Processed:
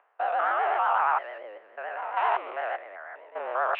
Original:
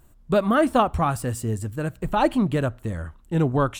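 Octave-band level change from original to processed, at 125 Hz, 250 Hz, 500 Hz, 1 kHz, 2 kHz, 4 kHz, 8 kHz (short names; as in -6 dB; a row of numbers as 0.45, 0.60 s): under -40 dB, under -30 dB, -8.5 dB, +0.5 dB, +1.0 dB, -9.0 dB, under -40 dB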